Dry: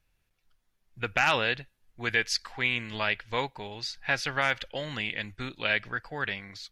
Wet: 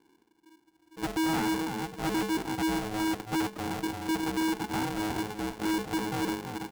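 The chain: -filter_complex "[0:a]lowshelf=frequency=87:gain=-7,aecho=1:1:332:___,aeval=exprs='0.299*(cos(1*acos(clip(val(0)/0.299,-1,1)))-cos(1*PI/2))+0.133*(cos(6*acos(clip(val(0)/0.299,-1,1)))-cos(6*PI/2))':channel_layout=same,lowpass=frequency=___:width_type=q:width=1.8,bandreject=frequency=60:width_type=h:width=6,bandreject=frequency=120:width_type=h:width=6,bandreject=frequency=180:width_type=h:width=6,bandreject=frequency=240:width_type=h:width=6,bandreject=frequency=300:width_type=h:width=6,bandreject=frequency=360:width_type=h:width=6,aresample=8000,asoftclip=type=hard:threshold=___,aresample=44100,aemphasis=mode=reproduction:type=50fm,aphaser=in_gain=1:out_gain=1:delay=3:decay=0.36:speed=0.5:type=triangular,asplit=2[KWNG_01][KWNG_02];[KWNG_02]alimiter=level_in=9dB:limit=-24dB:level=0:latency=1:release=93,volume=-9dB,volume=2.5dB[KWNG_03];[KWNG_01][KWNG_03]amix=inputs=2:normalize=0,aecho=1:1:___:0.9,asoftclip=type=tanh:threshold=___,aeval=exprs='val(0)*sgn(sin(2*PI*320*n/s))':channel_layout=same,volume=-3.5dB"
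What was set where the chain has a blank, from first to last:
0.251, 500, -28.5dB, 1.9, -22dB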